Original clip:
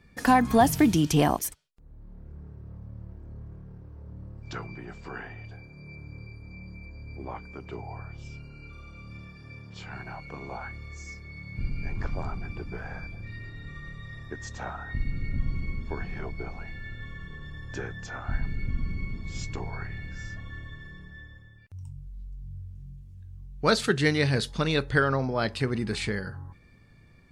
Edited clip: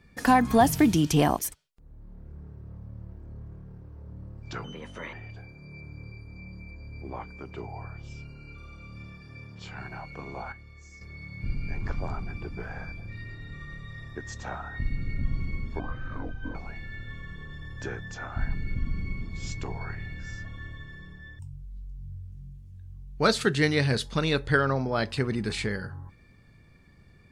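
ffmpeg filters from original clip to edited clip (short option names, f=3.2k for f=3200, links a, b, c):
-filter_complex "[0:a]asplit=8[a][b][c][d][e][f][g][h];[a]atrim=end=4.644[i];[b]atrim=start=4.64:end=5.28,asetpts=PTS-STARTPTS,asetrate=57330,aresample=44100[j];[c]atrim=start=5.276:end=10.672[k];[d]atrim=start=10.668:end=11.162,asetpts=PTS-STARTPTS,volume=-8dB[l];[e]atrim=start=11.158:end=15.944[m];[f]atrim=start=15.94:end=16.47,asetpts=PTS-STARTPTS,asetrate=30870,aresample=44100[n];[g]atrim=start=16.466:end=21.312[o];[h]atrim=start=21.818[p];[i][j]acrossfade=d=0.004:c1=hsin:c2=hsin[q];[q][k]acrossfade=d=0.004:c1=hsin:c2=hsin[r];[r][l]acrossfade=d=0.004:c1=hsin:c2=hsin[s];[s][m]acrossfade=d=0.004:c1=hsin:c2=hsin[t];[t][n]acrossfade=d=0.004:c1=hsin:c2=hsin[u];[u][o]acrossfade=d=0.004:c1=hsin:c2=hsin[v];[v][p]acrossfade=d=0.004:c1=hsin:c2=hsin"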